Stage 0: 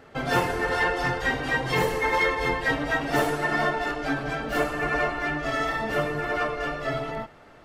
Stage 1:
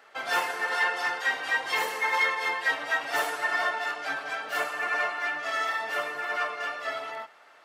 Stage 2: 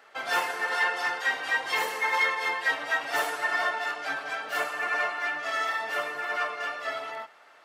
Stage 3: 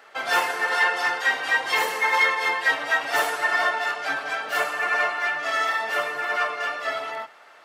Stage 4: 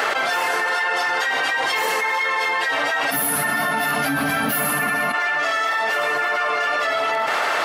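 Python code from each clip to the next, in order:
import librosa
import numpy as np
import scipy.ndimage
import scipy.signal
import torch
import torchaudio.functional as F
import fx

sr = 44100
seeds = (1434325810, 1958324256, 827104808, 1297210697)

y1 = fx.octave_divider(x, sr, octaves=1, level_db=-2.0)
y1 = scipy.signal.sosfilt(scipy.signal.butter(2, 860.0, 'highpass', fs=sr, output='sos'), y1)
y2 = y1
y3 = fx.hum_notches(y2, sr, base_hz=60, count=5)
y3 = F.gain(torch.from_numpy(y3), 5.0).numpy()
y4 = fx.spec_box(y3, sr, start_s=3.1, length_s=2.04, low_hz=300.0, high_hz=9700.0, gain_db=-21)
y4 = fx.env_flatten(y4, sr, amount_pct=100)
y4 = F.gain(torch.from_numpy(y4), -4.5).numpy()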